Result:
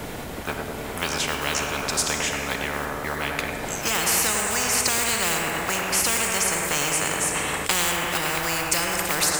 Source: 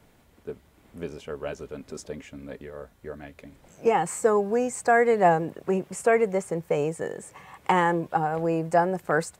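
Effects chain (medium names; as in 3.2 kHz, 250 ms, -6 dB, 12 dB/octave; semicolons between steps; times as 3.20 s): block-companded coder 7-bit; in parallel at -1 dB: peak limiter -15 dBFS, peak gain reduction 8 dB; on the sum: tape echo 104 ms, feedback 72%, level -5 dB, low-pass 1.1 kHz; Schroeder reverb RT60 1.7 s, combs from 28 ms, DRR 9 dB; spectrum-flattening compressor 10:1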